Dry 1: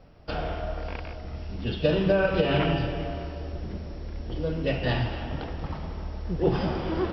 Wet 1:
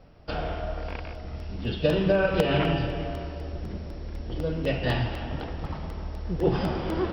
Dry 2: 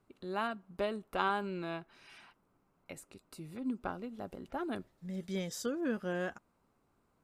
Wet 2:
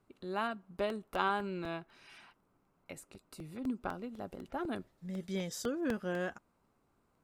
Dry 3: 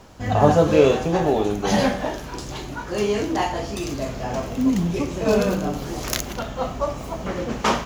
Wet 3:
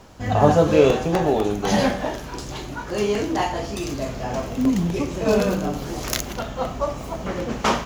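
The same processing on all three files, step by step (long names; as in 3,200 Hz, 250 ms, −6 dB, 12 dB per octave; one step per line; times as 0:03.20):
regular buffer underruns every 0.25 s, samples 64, repeat, from 0:00.90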